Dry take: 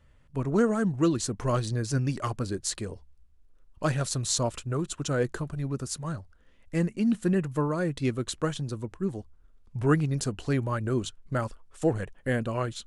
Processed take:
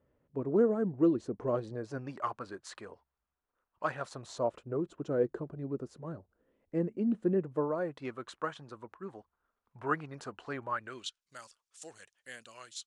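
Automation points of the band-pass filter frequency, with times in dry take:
band-pass filter, Q 1.3
1.43 s 410 Hz
2.36 s 1.1 kHz
3.89 s 1.1 kHz
4.79 s 410 Hz
7.42 s 410 Hz
8.14 s 1.1 kHz
10.69 s 1.1 kHz
11.22 s 6 kHz

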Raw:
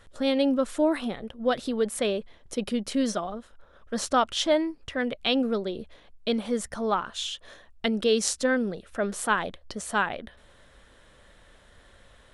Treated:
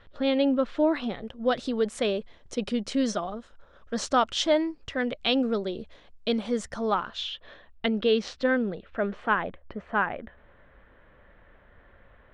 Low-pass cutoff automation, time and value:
low-pass 24 dB/octave
0.72 s 4 kHz
1.33 s 7.4 kHz
6.91 s 7.4 kHz
7.33 s 3.8 kHz
8.57 s 3.8 kHz
9.62 s 2.3 kHz

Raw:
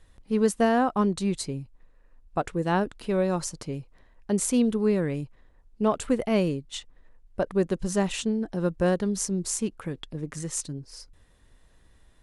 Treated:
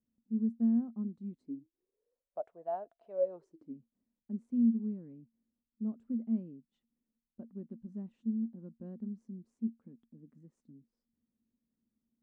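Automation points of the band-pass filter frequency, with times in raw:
band-pass filter, Q 18
1.30 s 230 Hz
2.51 s 680 Hz
3.09 s 680 Hz
3.79 s 230 Hz

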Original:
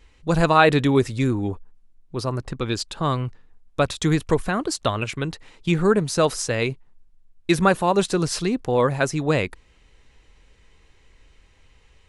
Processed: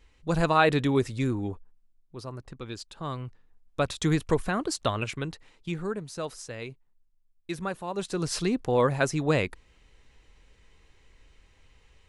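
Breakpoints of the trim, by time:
1.41 s -6 dB
2.16 s -13 dB
2.89 s -13 dB
4.04 s -4.5 dB
5.08 s -4.5 dB
5.98 s -15 dB
7.87 s -15 dB
8.38 s -3.5 dB

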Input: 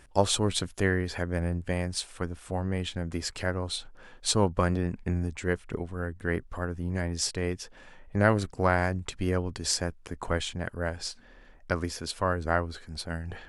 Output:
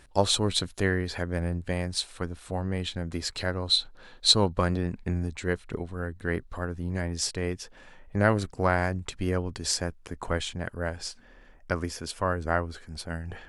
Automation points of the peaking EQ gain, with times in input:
peaking EQ 4 kHz 0.25 oct
+7.5 dB
from 3.37 s +15 dB
from 4.53 s +8.5 dB
from 6.98 s +1 dB
from 11.01 s -5 dB

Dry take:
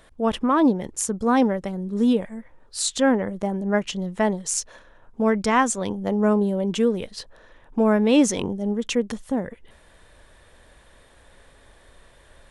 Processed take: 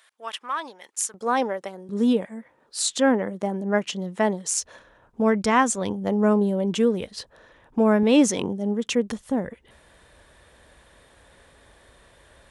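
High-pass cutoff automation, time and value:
1.4 kHz
from 1.14 s 460 Hz
from 1.89 s 180 Hz
from 4.58 s 51 Hz
from 8.03 s 120 Hz
from 8.93 s 47 Hz

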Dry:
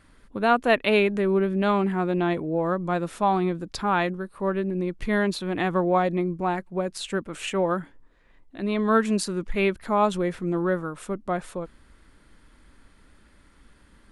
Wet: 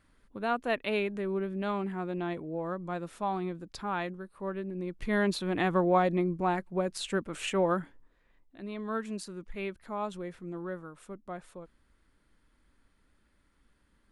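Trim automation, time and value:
4.74 s -10 dB
5.29 s -3 dB
7.78 s -3 dB
8.71 s -13.5 dB

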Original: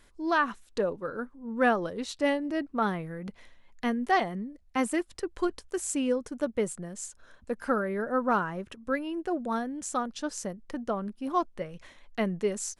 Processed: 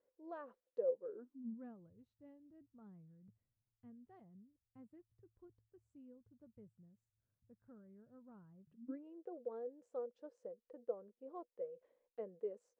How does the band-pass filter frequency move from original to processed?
band-pass filter, Q 15
0.99 s 510 Hz
1.86 s 110 Hz
8.58 s 110 Hz
9.08 s 490 Hz

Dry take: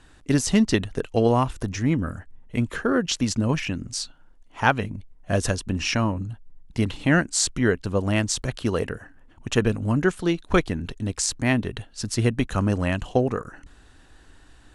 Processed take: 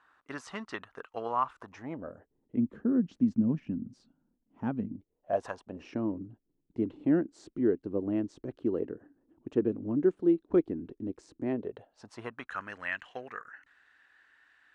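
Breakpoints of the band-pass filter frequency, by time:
band-pass filter, Q 3.1
1.56 s 1.2 kHz
2.71 s 230 Hz
4.85 s 230 Hz
5.51 s 990 Hz
5.96 s 330 Hz
11.38 s 330 Hz
12.67 s 1.8 kHz

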